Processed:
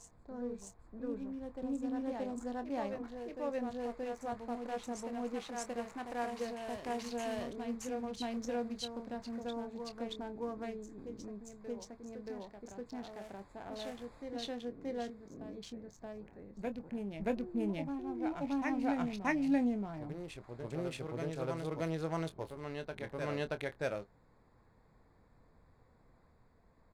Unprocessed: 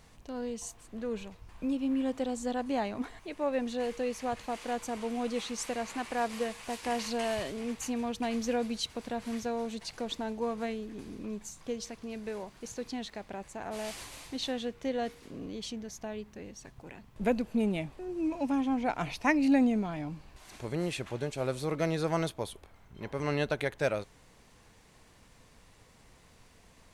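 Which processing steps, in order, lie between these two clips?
local Wiener filter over 15 samples; doubling 25 ms -11 dB; reverse echo 627 ms -5 dB; trim -7 dB

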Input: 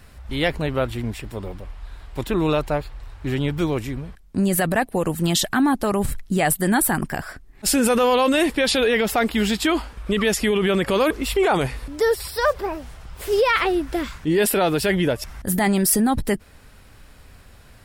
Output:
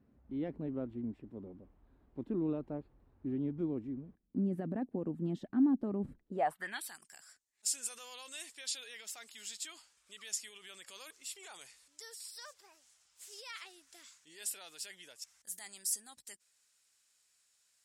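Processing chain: band-pass sweep 260 Hz -> 7.1 kHz, 6.18–6.98 s; trim -8 dB

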